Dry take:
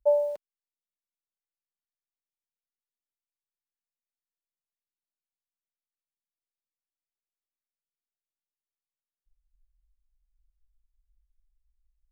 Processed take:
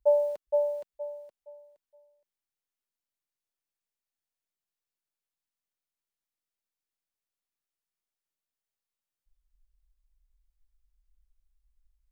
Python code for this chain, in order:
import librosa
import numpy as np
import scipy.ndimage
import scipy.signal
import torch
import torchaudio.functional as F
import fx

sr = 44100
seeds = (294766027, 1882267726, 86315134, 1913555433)

y = fx.echo_feedback(x, sr, ms=468, feedback_pct=26, wet_db=-3.5)